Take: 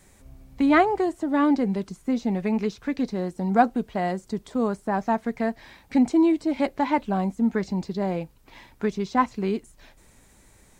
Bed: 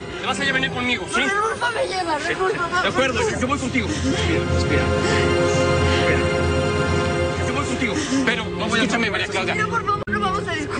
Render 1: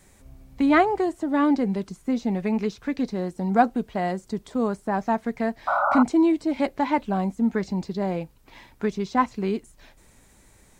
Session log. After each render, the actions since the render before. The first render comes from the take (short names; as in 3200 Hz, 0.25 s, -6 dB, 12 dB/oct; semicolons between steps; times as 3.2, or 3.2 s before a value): 5.67–6.03 painted sound noise 560–1500 Hz -22 dBFS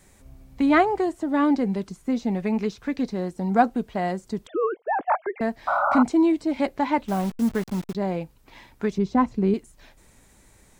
4.47–5.41 sine-wave speech; 7.08–7.95 level-crossing sampler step -34 dBFS; 8.98–9.54 tilt shelf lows +7 dB, about 660 Hz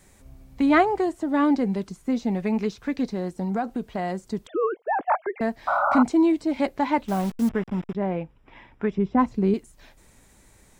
3.13–4.19 compressor 4:1, threshold -23 dBFS; 7.49–9.19 polynomial smoothing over 25 samples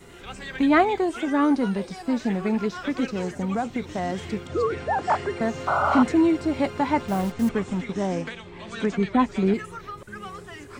add bed -16.5 dB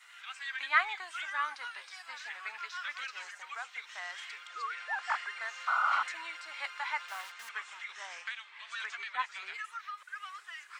HPF 1300 Hz 24 dB/oct; high shelf 5700 Hz -11.5 dB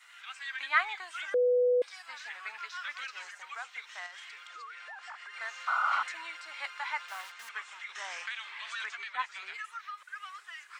1.34–1.82 bleep 494 Hz -22 dBFS; 4.06–5.34 compressor 5:1, threshold -43 dBFS; 7.95–8.89 fast leveller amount 50%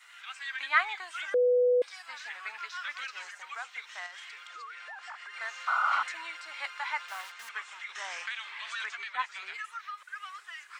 gain +1.5 dB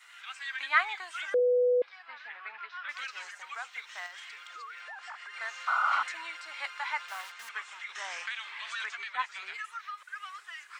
1.39–2.89 air absorption 330 m; 3.64–4.84 block floating point 7-bit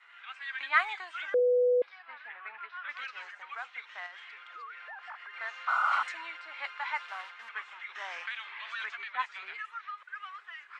low-pass opened by the level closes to 2500 Hz, open at -22.5 dBFS; bell 5700 Hz -4 dB 1.4 oct